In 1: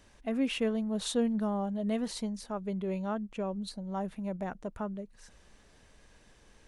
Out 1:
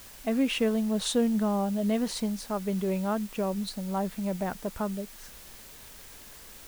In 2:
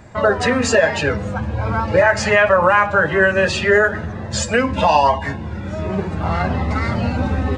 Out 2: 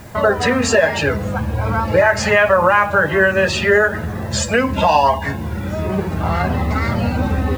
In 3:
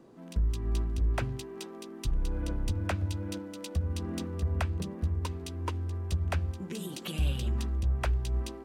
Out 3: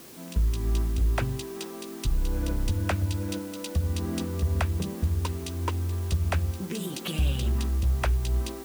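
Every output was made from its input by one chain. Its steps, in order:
in parallel at 0 dB: compression, threshold -27 dBFS; on the sum: word length cut 8-bit, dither triangular; trim -1 dB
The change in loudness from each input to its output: +4.5 LU, +0.5 LU, +4.5 LU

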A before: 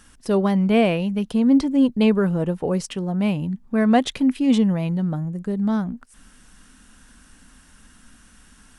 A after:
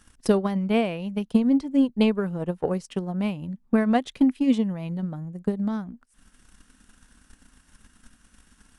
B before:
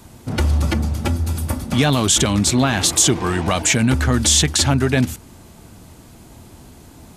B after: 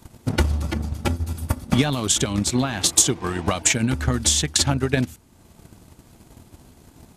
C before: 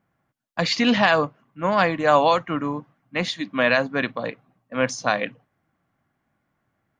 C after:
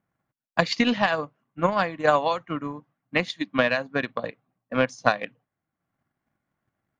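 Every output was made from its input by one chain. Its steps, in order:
transient shaper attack +12 dB, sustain -5 dB; trim -7.5 dB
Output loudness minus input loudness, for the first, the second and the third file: -4.0 LU, -4.0 LU, -3.0 LU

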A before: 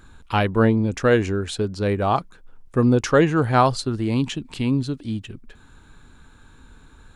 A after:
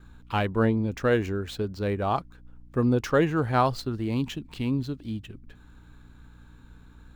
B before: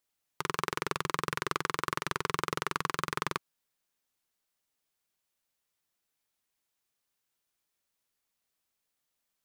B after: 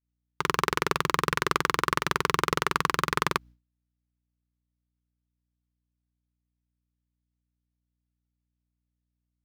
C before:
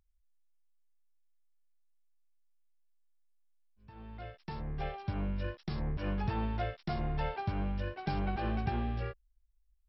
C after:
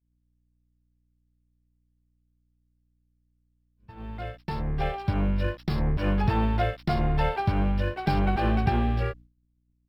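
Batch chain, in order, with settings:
median filter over 5 samples; hum 60 Hz, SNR 24 dB; expander -48 dBFS; normalise loudness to -27 LUFS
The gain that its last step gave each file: -5.5 dB, +7.5 dB, +9.5 dB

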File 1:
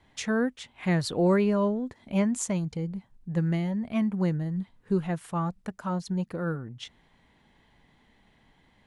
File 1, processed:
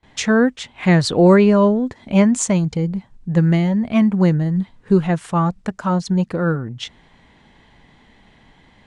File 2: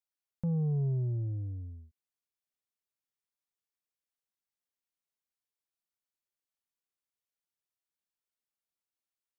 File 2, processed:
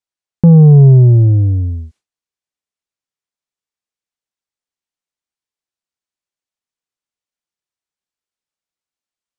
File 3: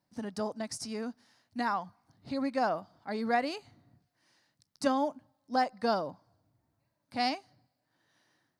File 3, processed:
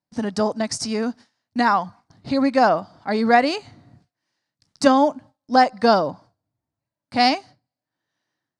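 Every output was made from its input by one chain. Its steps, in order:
gate with hold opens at -54 dBFS; low-pass 8.8 kHz 24 dB/octave; peak normalisation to -2 dBFS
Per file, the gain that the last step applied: +11.5 dB, +25.0 dB, +13.0 dB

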